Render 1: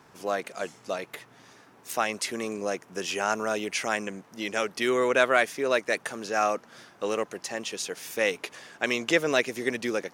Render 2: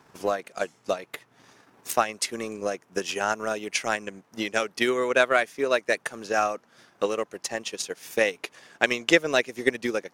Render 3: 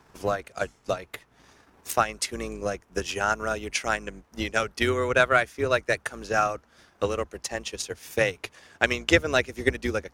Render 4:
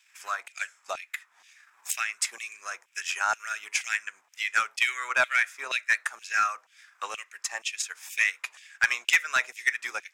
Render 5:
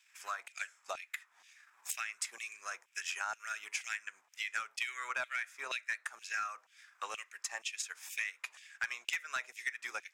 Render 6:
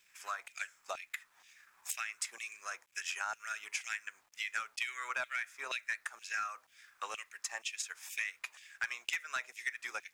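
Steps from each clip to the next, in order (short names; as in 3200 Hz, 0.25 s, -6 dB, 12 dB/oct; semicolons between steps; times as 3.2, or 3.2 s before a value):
transient shaper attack +9 dB, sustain -6 dB; gain -2 dB
octaver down 2 oct, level -2 dB; dynamic EQ 1400 Hz, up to +5 dB, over -43 dBFS, Q 5.3; gain -1 dB
reverb RT60 0.25 s, pre-delay 3 ms, DRR 17.5 dB; LFO high-pass saw down 2.1 Hz 760–3000 Hz; soft clip -11 dBFS, distortion -12 dB; gain -1.5 dB
compressor 4:1, threshold -30 dBFS, peak gain reduction 11.5 dB; gain -5 dB
bit-crush 12-bit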